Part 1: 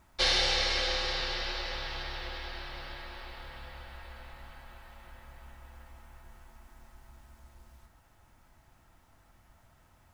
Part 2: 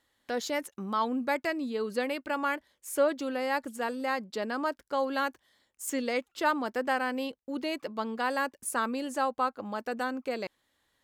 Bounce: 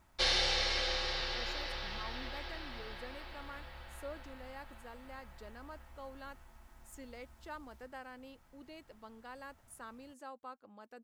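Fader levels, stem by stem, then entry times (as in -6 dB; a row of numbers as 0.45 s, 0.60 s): -4.0 dB, -19.5 dB; 0.00 s, 1.05 s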